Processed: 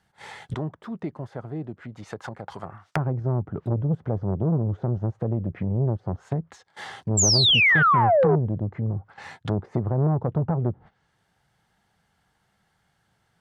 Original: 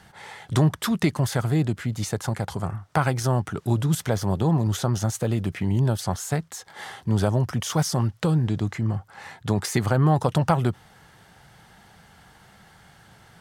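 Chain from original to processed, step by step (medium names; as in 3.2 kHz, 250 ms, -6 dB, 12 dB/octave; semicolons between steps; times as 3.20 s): low-pass that closes with the level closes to 540 Hz, closed at -22 dBFS; gate -43 dBFS, range -17 dB; 0.54–2.96 s: tilt EQ +4.5 dB/octave; 7.17–8.36 s: painted sound fall 370–7700 Hz -17 dBFS; transformer saturation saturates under 500 Hz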